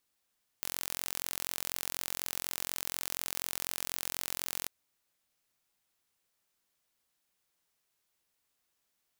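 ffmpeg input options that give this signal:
-f lavfi -i "aevalsrc='0.398*eq(mod(n,1000),0)':d=4.05:s=44100"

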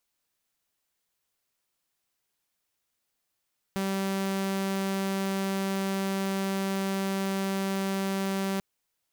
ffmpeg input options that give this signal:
-f lavfi -i "aevalsrc='0.0596*(2*mod(194*t,1)-1)':d=4.84:s=44100"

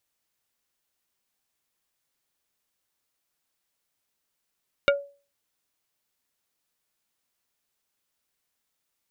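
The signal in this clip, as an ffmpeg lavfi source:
-f lavfi -i "aevalsrc='0.188*pow(10,-3*t/0.36)*sin(2*PI*565*t)+0.15*pow(10,-3*t/0.12)*sin(2*PI*1412.5*t)+0.119*pow(10,-3*t/0.068)*sin(2*PI*2260*t)+0.0944*pow(10,-3*t/0.052)*sin(2*PI*2825*t)+0.075*pow(10,-3*t/0.038)*sin(2*PI*3672.5*t)':d=0.45:s=44100"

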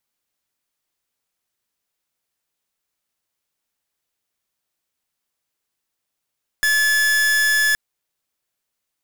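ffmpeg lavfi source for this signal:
-f lavfi -i "aevalsrc='0.141*(2*lt(mod(1720*t,1),0.43)-1)':d=1.12:s=44100"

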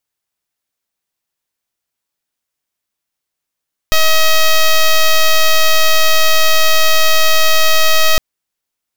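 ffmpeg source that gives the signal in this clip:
-f lavfi -i "aevalsrc='0.376*(2*lt(mod(635*t,1),0.07)-1)':d=4.26:s=44100"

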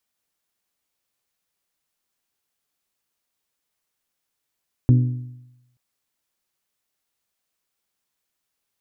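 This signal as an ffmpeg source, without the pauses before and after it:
-f lavfi -i "aevalsrc='0.355*pow(10,-3*t/0.92)*sin(2*PI*124*t)+0.141*pow(10,-3*t/0.747)*sin(2*PI*248*t)+0.0562*pow(10,-3*t/0.707)*sin(2*PI*297.6*t)+0.0224*pow(10,-3*t/0.662)*sin(2*PI*372*t)+0.00891*pow(10,-3*t/0.607)*sin(2*PI*496*t)':d=0.88:s=44100"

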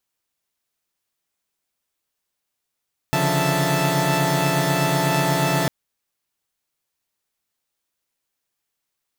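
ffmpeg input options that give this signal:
-f lavfi -i "aevalsrc='0.0794*((2*mod(138.59*t,1)-1)+(2*mod(146.83*t,1)-1)+(2*mod(174.61*t,1)-1)+(2*mod(659.26*t,1)-1)+(2*mod(880*t,1)-1))':d=2.55:s=44100"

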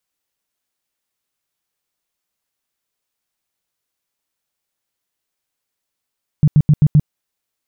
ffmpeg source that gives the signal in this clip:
-f lavfi -i "aevalsrc='0.501*sin(2*PI*150*mod(t,0.13))*lt(mod(t,0.13),7/150)':d=0.65:s=44100"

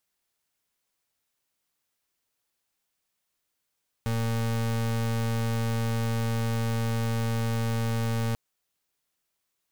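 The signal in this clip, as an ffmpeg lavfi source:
-f lavfi -i "aevalsrc='0.0447*(2*lt(mod(114*t,1),0.34)-1)':d=4.29:s=44100"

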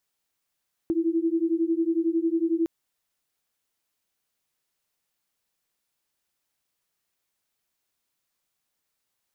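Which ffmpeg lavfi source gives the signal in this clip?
-f lavfi -i "aevalsrc='0.0596*(sin(2*PI*325*t)+sin(2*PI*336*t))':d=1.76:s=44100"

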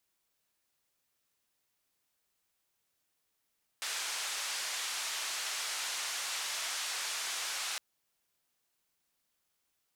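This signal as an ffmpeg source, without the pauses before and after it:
-f lavfi -i "anoisesrc=c=white:d=3.96:r=44100:seed=1,highpass=f=900,lowpass=f=7300,volume=-27dB"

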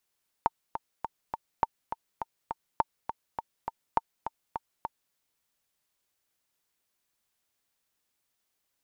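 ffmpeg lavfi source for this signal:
-f lavfi -i "aevalsrc='pow(10,(-9.5-9.5*gte(mod(t,4*60/205),60/205))/20)*sin(2*PI*908*mod(t,60/205))*exp(-6.91*mod(t,60/205)/0.03)':d=4.68:s=44100"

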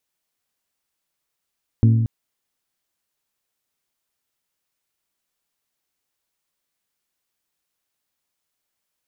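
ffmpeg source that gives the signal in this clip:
-f lavfi -i "aevalsrc='0.335*pow(10,-3*t/1.52)*sin(2*PI*113*t)+0.15*pow(10,-3*t/0.936)*sin(2*PI*226*t)+0.0668*pow(10,-3*t/0.824)*sin(2*PI*271.2*t)+0.0299*pow(10,-3*t/0.704)*sin(2*PI*339*t)+0.0133*pow(10,-3*t/0.576)*sin(2*PI*452*t)':d=0.23:s=44100"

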